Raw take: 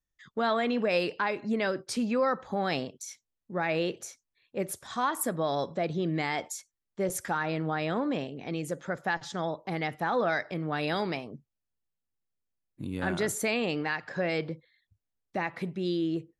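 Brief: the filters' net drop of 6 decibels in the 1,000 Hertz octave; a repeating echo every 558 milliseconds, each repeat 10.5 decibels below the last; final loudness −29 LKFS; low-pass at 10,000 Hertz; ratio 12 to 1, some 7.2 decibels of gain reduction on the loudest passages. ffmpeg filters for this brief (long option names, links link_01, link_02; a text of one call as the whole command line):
ffmpeg -i in.wav -af "lowpass=10000,equalizer=frequency=1000:width_type=o:gain=-8.5,acompressor=threshold=-32dB:ratio=12,aecho=1:1:558|1116|1674:0.299|0.0896|0.0269,volume=8.5dB" out.wav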